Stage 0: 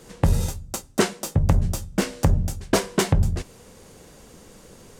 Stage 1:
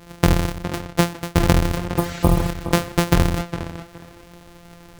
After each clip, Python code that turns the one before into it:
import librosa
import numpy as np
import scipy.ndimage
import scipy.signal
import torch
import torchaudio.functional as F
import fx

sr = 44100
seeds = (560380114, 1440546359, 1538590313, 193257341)

y = np.r_[np.sort(x[:len(x) // 256 * 256].reshape(-1, 256), axis=1).ravel(), x[len(x) // 256 * 256:]]
y = fx.spec_repair(y, sr, seeds[0], start_s=1.99, length_s=0.48, low_hz=1300.0, high_hz=8200.0, source='after')
y = fx.echo_tape(y, sr, ms=412, feedback_pct=23, wet_db=-8.5, lp_hz=3500.0, drive_db=6.0, wow_cents=37)
y = y * librosa.db_to_amplitude(2.5)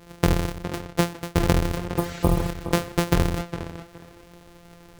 y = fx.peak_eq(x, sr, hz=430.0, db=4.5, octaves=0.42)
y = y * librosa.db_to_amplitude(-4.5)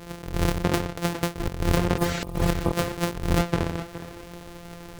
y = fx.over_compress(x, sr, threshold_db=-26.0, ratio=-0.5)
y = y * librosa.db_to_amplitude(3.0)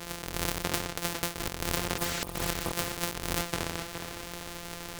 y = fx.spectral_comp(x, sr, ratio=2.0)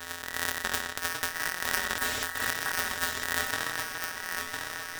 y = fx.band_invert(x, sr, width_hz=2000)
y = y + 10.0 ** (-5.0 / 20.0) * np.pad(y, (int(1004 * sr / 1000.0), 0))[:len(y)]